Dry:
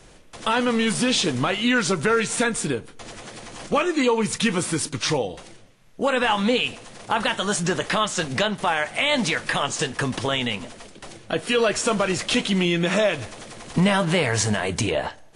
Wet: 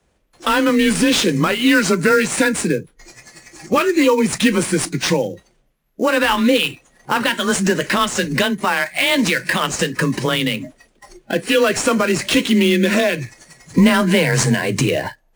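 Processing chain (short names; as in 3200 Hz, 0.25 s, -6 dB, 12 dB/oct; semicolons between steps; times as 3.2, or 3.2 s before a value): dynamic EQ 710 Hz, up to -8 dB, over -39 dBFS, Q 2.3; spectral noise reduction 21 dB; frequency shift +23 Hz; in parallel at -6 dB: sample-rate reducer 6500 Hz, jitter 20%; on the sum: gain +4 dB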